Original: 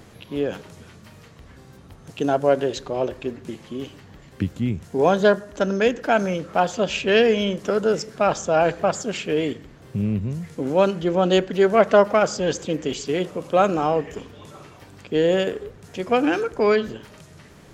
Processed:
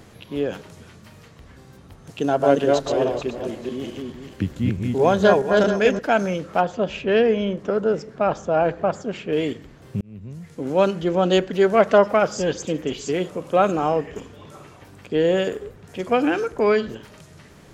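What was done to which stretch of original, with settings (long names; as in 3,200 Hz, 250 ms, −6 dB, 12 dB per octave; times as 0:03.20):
0:02.18–0:05.99: feedback delay that plays each chunk backwards 216 ms, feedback 41%, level −2 dB
0:06.61–0:09.33: low-pass filter 1,400 Hz 6 dB per octave
0:10.01–0:10.82: fade in
0:11.98–0:16.95: multiband delay without the direct sound lows, highs 50 ms, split 4,400 Hz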